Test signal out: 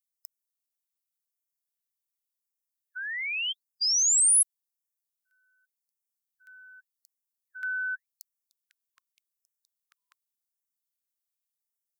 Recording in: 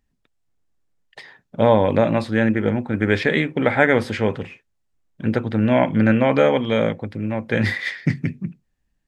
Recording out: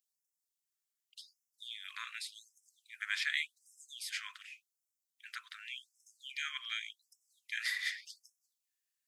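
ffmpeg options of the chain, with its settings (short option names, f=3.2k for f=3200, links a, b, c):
-af "aderivative,afftfilt=real='re*gte(b*sr/1024,970*pow(5200/970,0.5+0.5*sin(2*PI*0.87*pts/sr)))':imag='im*gte(b*sr/1024,970*pow(5200/970,0.5+0.5*sin(2*PI*0.87*pts/sr)))':win_size=1024:overlap=0.75"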